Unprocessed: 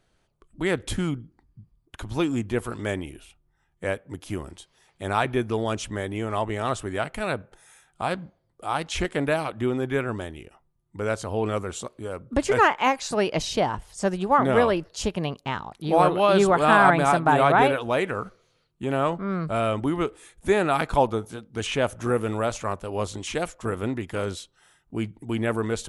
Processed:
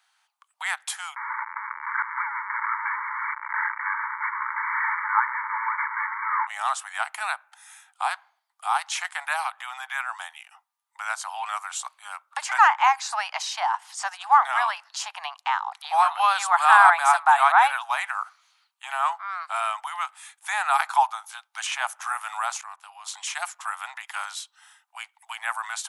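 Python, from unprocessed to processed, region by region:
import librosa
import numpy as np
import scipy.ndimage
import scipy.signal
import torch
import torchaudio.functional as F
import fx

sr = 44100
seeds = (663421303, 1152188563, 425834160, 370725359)

y = fx.chain(x, sr, fx.delta_mod(bps=16000, step_db=-18.5),
    fx.brickwall_bandpass(low_hz=850.0, high_hz=2300.0),
    fx.echo_single(ms=167, db=-23.0), at=(1.16, 6.47))
y = fx.chain(y, sr, fx.high_shelf(hz=10000.0, db=-11.0),
    fx.band_squash(depth_pct=40), at=(12.42, 16.21))
y = fx.chain(y, sr, fx.highpass(hz=48.0, slope=12),
    fx.low_shelf(hz=450.0, db=-4.0),
    fx.level_steps(step_db=21), at=(22.61, 23.08))
y = scipy.signal.sosfilt(scipy.signal.butter(12, 780.0, 'highpass', fs=sr, output='sos'), y)
y = fx.dynamic_eq(y, sr, hz=3000.0, q=1.1, threshold_db=-43.0, ratio=4.0, max_db=-6)
y = y * librosa.db_to_amplitude(5.5)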